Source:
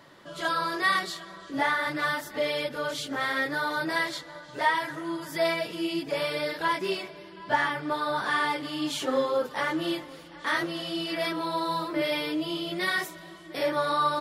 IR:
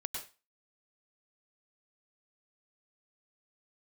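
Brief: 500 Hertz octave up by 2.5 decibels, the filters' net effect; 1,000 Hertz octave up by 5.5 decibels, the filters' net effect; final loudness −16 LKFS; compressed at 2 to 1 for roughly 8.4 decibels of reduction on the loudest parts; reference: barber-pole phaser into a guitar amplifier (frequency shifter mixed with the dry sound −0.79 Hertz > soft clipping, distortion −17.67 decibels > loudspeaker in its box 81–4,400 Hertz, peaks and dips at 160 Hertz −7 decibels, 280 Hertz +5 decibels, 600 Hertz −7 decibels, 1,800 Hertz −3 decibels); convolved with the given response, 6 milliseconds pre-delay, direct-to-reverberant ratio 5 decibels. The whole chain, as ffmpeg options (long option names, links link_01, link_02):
-filter_complex "[0:a]equalizer=frequency=500:width_type=o:gain=6.5,equalizer=frequency=1000:width_type=o:gain=5.5,acompressor=threshold=-29dB:ratio=2,asplit=2[link_01][link_02];[1:a]atrim=start_sample=2205,adelay=6[link_03];[link_02][link_03]afir=irnorm=-1:irlink=0,volume=-6dB[link_04];[link_01][link_04]amix=inputs=2:normalize=0,asplit=2[link_05][link_06];[link_06]afreqshift=-0.79[link_07];[link_05][link_07]amix=inputs=2:normalize=1,asoftclip=threshold=-23.5dB,highpass=81,equalizer=frequency=160:width_type=q:width=4:gain=-7,equalizer=frequency=280:width_type=q:width=4:gain=5,equalizer=frequency=600:width_type=q:width=4:gain=-7,equalizer=frequency=1800:width_type=q:width=4:gain=-3,lowpass=frequency=4400:width=0.5412,lowpass=frequency=4400:width=1.3066,volume=17.5dB"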